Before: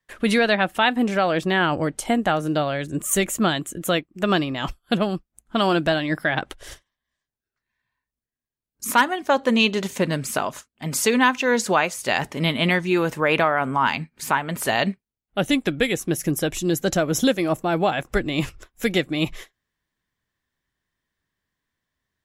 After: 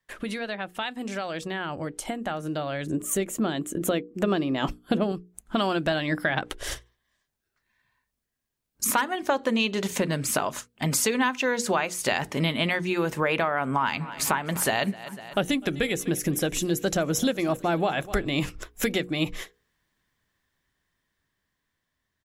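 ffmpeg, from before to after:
-filter_complex "[0:a]asettb=1/sr,asplit=3[a][b][c];[a]atrim=end=0.794[d];[b]atrim=start=0.79:end=1.48,asetpts=PTS-STARTPTS,afade=t=in:d=0.004:c=qsin,afade=t=out:st=0.686:d=0.004:c=qsin,equalizer=f=6.7k:w=0.55:g=8.5[e];[c]atrim=start=1.476[f];[d][e]acrossfade=d=0.004:c1=hsin:c2=qsin[g];[g][f]acrossfade=d=0.004:c1=qsin:c2=hsin,asettb=1/sr,asplit=3[h][i][j];[h]atrim=end=2.864[k];[i]atrim=start=2.86:end=5.12,asetpts=PTS-STARTPTS,afade=t=in:d=0.004:c=qsin,afade=t=out:st=2.256:d=0.004:c=qsin,equalizer=f=340:w=0.63:g=9[l];[j]atrim=start=5.116[m];[k][l]acrossfade=d=0.004:c1=hsin:c2=qsin[n];[n][m]acrossfade=d=0.004:c1=qsin:c2=hsin,asplit=3[o][p][q];[o]afade=t=out:st=13.76:d=0.02[r];[p]aecho=1:1:249|498|747|996:0.0708|0.0382|0.0206|0.0111,afade=t=in:st=13.76:d=0.02,afade=t=out:st=18.27:d=0.02[s];[q]afade=t=in:st=18.27:d=0.02[t];[r][s][t]amix=inputs=3:normalize=0,acompressor=threshold=-31dB:ratio=4,bandreject=f=60:t=h:w=6,bandreject=f=120:t=h:w=6,bandreject=f=180:t=h:w=6,bandreject=f=240:t=h:w=6,bandreject=f=300:t=h:w=6,bandreject=f=360:t=h:w=6,bandreject=f=420:t=h:w=6,bandreject=f=480:t=h:w=6,dynaudnorm=f=600:g=11:m=7.5dB"

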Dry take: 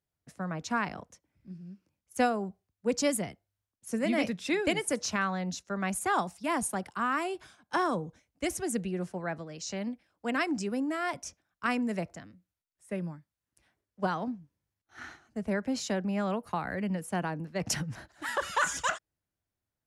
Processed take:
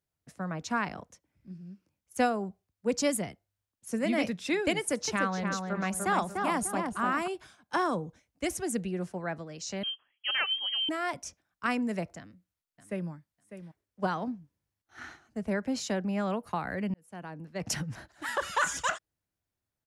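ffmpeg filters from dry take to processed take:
-filter_complex "[0:a]asettb=1/sr,asplit=3[a][b][c];[a]atrim=end=4.784[d];[b]atrim=start=4.78:end=7.28,asetpts=PTS-STARTPTS,afade=t=in:d=0.004:c=qsin,afade=t=out:st=2.496:d=0.004:c=qsin,asplit=2[e][f];[f]adelay=296,lowpass=f=1.7k:p=1,volume=-3dB,asplit=2[g][h];[h]adelay=296,lowpass=f=1.7k:p=1,volume=0.39,asplit=2[i][j];[j]adelay=296,lowpass=f=1.7k:p=1,volume=0.39,asplit=2[k][l];[l]adelay=296,lowpass=f=1.7k:p=1,volume=0.39,asplit=2[m][n];[n]adelay=296,lowpass=f=1.7k:p=1,volume=0.39[o];[e][g][i][k][m][o]amix=inputs=6:normalize=0,atrim=end_sample=110250[p];[c]atrim=start=7.276[q];[d][p]acrossfade=d=0.004:c1=hsin:c2=qsin[r];[r][q]acrossfade=d=0.004:c1=qsin:c2=hsin,asettb=1/sr,asplit=3[s][t][u];[s]atrim=end=9.834[v];[t]atrim=start=9.83:end=10.89,asetpts=PTS-STARTPTS,afade=t=in:d=0.004:c=qsin,afade=t=out:st=1.056:d=0.004:c=qsin,lowpass=f=2.9k:t=q:w=0.5098,lowpass=f=2.9k:t=q:w=0.6013,lowpass=f=2.9k:t=q:w=0.9,lowpass=f=2.9k:t=q:w=2.563,afreqshift=-3400[w];[u]atrim=start=10.886[x];[v][w]acrossfade=d=0.004:c1=hsin:c2=qsin[y];[y][x]acrossfade=d=0.004:c1=qsin:c2=hsin,asplit=2[z][aa];[aa]afade=t=in:st=12.18:d=0.01,afade=t=out:st=13.11:d=0.01,aecho=0:1:600|1200:0.281838|0.0422757[ab];[z][ab]amix=inputs=2:normalize=0,asplit=2[ac][ad];[ac]atrim=end=16.94,asetpts=PTS-STARTPTS,afade=t=out:st=16.936:d=0.004:c=hsin[ae];[ad]atrim=start=16.94,asetpts=PTS-STARTPTS,afade=t=in:d=0.92[af];[ae][af]concat=n=2:v=0:a=1"

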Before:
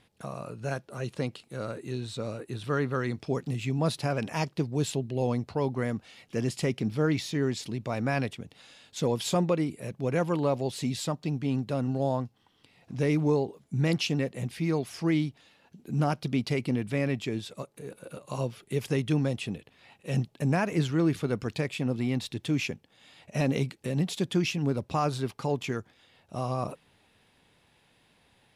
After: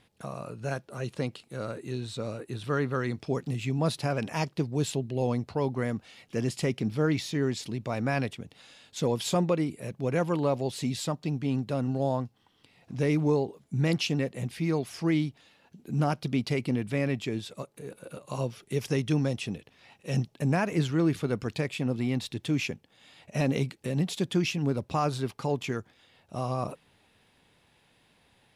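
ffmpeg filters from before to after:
-filter_complex "[0:a]asettb=1/sr,asplit=3[a][b][c];[a]atrim=end=18.504[d];[b]atrim=start=18.5:end=20.34,asetpts=PTS-STARTPTS,afade=t=in:d=0.004:c=qsin,afade=t=out:st=1.836:d=0.004:c=qsin,equalizer=f=5.7k:t=o:w=0.27:g=7[e];[c]atrim=start=20.336[f];[d][e]acrossfade=d=0.004:c1=hsin:c2=qsin[g];[g][f]acrossfade=d=0.004:c1=qsin:c2=hsin"

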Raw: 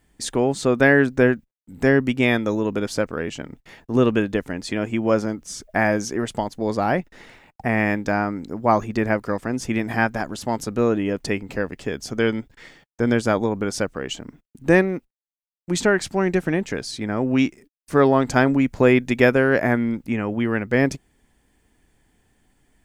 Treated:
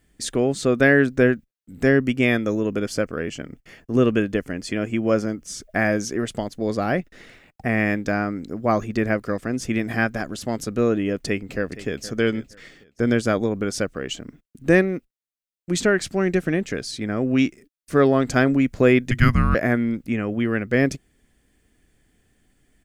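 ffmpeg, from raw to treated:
-filter_complex "[0:a]asettb=1/sr,asplit=3[a][b][c];[a]atrim=end=1.974[d];[b]atrim=start=1.97:end=5.46,asetpts=PTS-STARTPTS,afade=t=in:d=0.004:c=qsin,afade=t=out:st=3.486:d=0.004:c=qsin,bandreject=f=3.8k:w=5.7[e];[c]atrim=start=5.456[f];[d][e]acrossfade=d=0.004:c1=hsin:c2=qsin[g];[g][f]acrossfade=d=0.004:c1=qsin:c2=hsin,asplit=2[h][i];[i]afade=t=in:st=11.15:d=0.01,afade=t=out:st=12.06:d=0.01,aecho=0:1:470|940|1410:0.16788|0.0419701|0.0104925[j];[h][j]amix=inputs=2:normalize=0,asettb=1/sr,asplit=3[k][l][m];[k]atrim=end=19.114[n];[l]atrim=start=19.11:end=19.55,asetpts=PTS-STARTPTS,afade=t=in:d=0.004:c=qsin,afade=t=out:st=0.436:d=0.004:c=qsin,afreqshift=-360[o];[m]atrim=start=19.546[p];[n][o]acrossfade=d=0.004:c1=hsin:c2=qsin[q];[q][p]acrossfade=d=0.004:c1=qsin:c2=hsin,equalizer=f=900:t=o:w=0.37:g=-12"

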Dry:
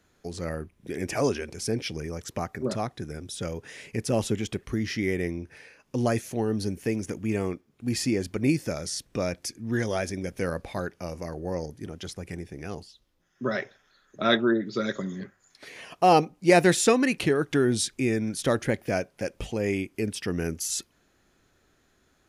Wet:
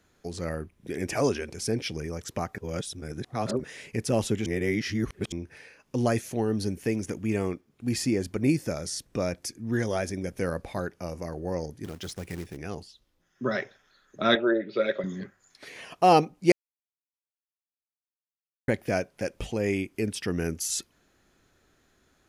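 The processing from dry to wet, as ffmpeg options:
-filter_complex "[0:a]asettb=1/sr,asplit=3[a][b][c];[a]atrim=end=7.964[d];[b]atrim=start=7.96:end=11.34,asetpts=PTS-STARTPTS,afade=t=in:d=0.004:c=qsin,afade=t=out:st=3.376:d=0.004:c=qsin,equalizer=f=3.1k:t=o:w=1.8:g=-3[e];[c]atrim=start=11.336[f];[d][e]acrossfade=d=0.004:c1=hsin:c2=qsin[g];[g][f]acrossfade=d=0.004:c1=qsin:c2=hsin,asettb=1/sr,asplit=3[h][i][j];[h]atrim=end=11.844[k];[i]atrim=start=11.84:end=12.57,asetpts=PTS-STARTPTS,afade=t=in:d=0.004:c=qsin,afade=t=out:st=0.726:d=0.004:c=qsin,acrusher=bits=3:mode=log:mix=0:aa=0.000001[l];[j]atrim=start=12.566[m];[k][l]acrossfade=d=0.004:c1=hsin:c2=qsin[n];[n][m]acrossfade=d=0.004:c1=qsin:c2=hsin,asettb=1/sr,asplit=3[o][p][q];[o]atrim=end=14.354[r];[p]atrim=start=14.35:end=15.04,asetpts=PTS-STARTPTS,afade=t=in:d=0.004:c=qsin,afade=t=out:st=0.686:d=0.004:c=qsin,highpass=210,equalizer=f=240:t=q:w=4:g=-9,equalizer=f=570:t=q:w=4:g=10,equalizer=f=1.1k:t=q:w=4:g=-6,equalizer=f=2.5k:t=q:w=4:g=10,lowpass=f=3.7k:w=0.5412,lowpass=f=3.7k:w=1.3066[s];[q]atrim=start=15.036[t];[r][s]acrossfade=d=0.004:c1=hsin:c2=qsin[u];[u][t]acrossfade=d=0.004:c1=qsin:c2=hsin,asplit=7[v][w][x][y][z][aa][ab];[v]atrim=end=2.582[ac];[w]atrim=start=2.578:end=3.642,asetpts=PTS-STARTPTS,areverse[ad];[x]atrim=start=3.638:end=4.462[ae];[y]atrim=start=4.458:end=5.322,asetpts=PTS-STARTPTS,areverse[af];[z]atrim=start=5.318:end=16.52,asetpts=PTS-STARTPTS,afade=t=out:st=11.198:d=0.004:c=hsin[ag];[aa]atrim=start=16.52:end=18.68,asetpts=PTS-STARTPTS,volume=0[ah];[ab]atrim=start=18.68,asetpts=PTS-STARTPTS,afade=t=in:d=0.004:c=hsin[ai];[ac][ad]acrossfade=d=0.004:c1=hsin:c2=hsin[aj];[aj][ae]acrossfade=d=0.004:c1=hsin:c2=hsin[ak];[ak][af]acrossfade=d=0.004:c1=hsin:c2=hsin[al];[ag][ah][ai]concat=n=3:v=0:a=1[am];[al][am]acrossfade=d=0.004:c1=hsin:c2=hsin"

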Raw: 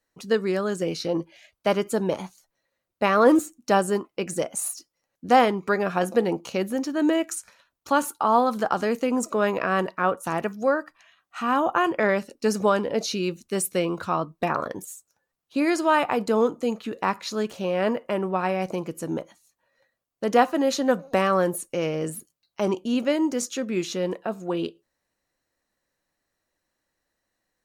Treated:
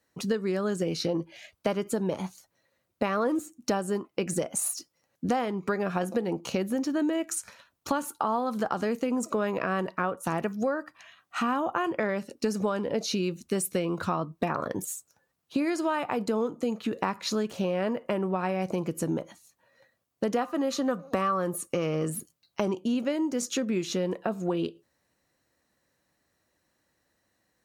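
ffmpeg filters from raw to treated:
-filter_complex "[0:a]asettb=1/sr,asplit=3[a][b][c];[a]atrim=end=20.414[d];[b]atrim=start=20.41:end=22.09,asetpts=PTS-STARTPTS,afade=t=in:d=0.004:c=qsin,afade=t=out:st=1.676:d=0.004:c=qsin,equalizer=f=1.2k:w=7.6:g=13[e];[c]atrim=start=22.086[f];[d][e]acrossfade=d=0.004:c1=hsin:c2=qsin[g];[g][f]acrossfade=d=0.004:c1=qsin:c2=hsin,highpass=81,lowshelf=f=210:g=7.5,acompressor=threshold=-30dB:ratio=6,volume=4.5dB"

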